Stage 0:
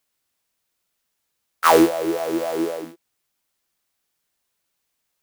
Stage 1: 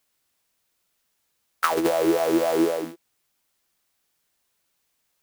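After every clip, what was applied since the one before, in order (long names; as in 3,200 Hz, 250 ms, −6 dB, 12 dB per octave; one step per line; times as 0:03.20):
compressor whose output falls as the input rises −17 dBFS, ratio −0.5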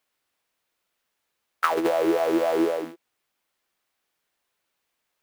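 bass and treble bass −7 dB, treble −8 dB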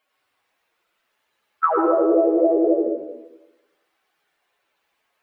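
expanding power law on the bin magnitudes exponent 2.3
convolution reverb RT60 1.1 s, pre-delay 78 ms, DRR 1 dB
level +4 dB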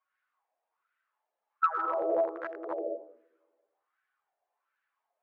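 wavefolder on the positive side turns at −12 dBFS
LFO wah 1.3 Hz 660–1,600 Hz, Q 3.9
level −3 dB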